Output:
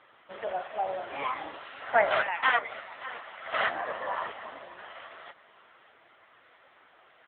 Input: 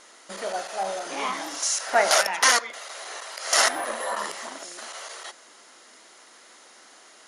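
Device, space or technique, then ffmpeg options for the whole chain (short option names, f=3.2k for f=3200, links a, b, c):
satellite phone: -af "highpass=310,lowpass=3.2k,aecho=1:1:588:0.15,volume=-1dB" -ar 8000 -c:a libopencore_amrnb -b:a 6700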